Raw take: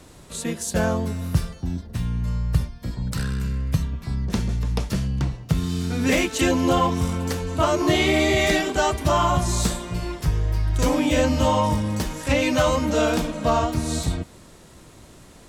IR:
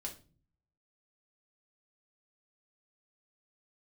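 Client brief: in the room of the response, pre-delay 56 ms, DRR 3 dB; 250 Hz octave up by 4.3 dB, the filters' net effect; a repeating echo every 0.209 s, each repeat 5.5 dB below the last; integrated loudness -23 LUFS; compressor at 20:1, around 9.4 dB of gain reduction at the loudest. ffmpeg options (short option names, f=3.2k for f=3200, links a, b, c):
-filter_complex "[0:a]equalizer=f=250:t=o:g=5.5,acompressor=threshold=-22dB:ratio=20,aecho=1:1:209|418|627|836|1045|1254|1463:0.531|0.281|0.149|0.079|0.0419|0.0222|0.0118,asplit=2[a][b];[1:a]atrim=start_sample=2205,adelay=56[c];[b][c]afir=irnorm=-1:irlink=0,volume=-1dB[d];[a][d]amix=inputs=2:normalize=0,volume=1dB"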